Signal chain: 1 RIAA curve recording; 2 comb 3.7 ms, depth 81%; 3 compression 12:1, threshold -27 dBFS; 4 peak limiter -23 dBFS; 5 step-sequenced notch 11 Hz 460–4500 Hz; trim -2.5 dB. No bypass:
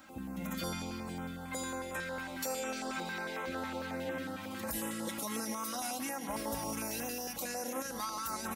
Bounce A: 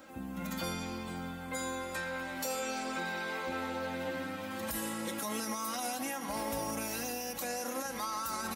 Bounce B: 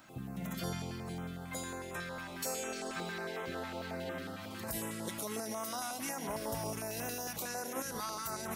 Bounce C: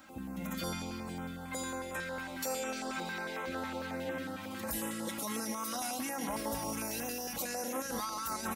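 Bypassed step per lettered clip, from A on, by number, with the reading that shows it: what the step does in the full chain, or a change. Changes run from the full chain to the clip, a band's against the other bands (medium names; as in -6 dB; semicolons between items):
5, crest factor change -2.0 dB; 2, 125 Hz band +4.5 dB; 3, mean gain reduction 3.0 dB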